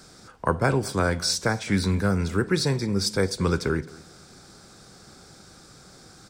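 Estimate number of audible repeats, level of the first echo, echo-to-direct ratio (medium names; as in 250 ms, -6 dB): 2, -21.5 dB, -21.0 dB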